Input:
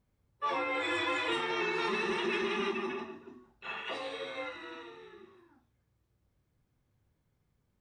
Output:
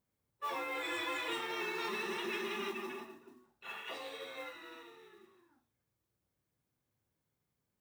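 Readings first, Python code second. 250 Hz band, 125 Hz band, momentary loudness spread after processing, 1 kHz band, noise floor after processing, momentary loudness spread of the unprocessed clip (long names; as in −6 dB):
−7.5 dB, −9.5 dB, 16 LU, −6.0 dB, below −85 dBFS, 15 LU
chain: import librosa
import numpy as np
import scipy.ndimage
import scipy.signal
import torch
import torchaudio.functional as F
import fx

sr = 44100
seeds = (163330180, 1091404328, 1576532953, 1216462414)

y = fx.highpass(x, sr, hz=190.0, slope=6)
y = fx.high_shelf(y, sr, hz=7100.0, db=9.0)
y = fx.mod_noise(y, sr, seeds[0], snr_db=21)
y = y * 10.0 ** (-6.0 / 20.0)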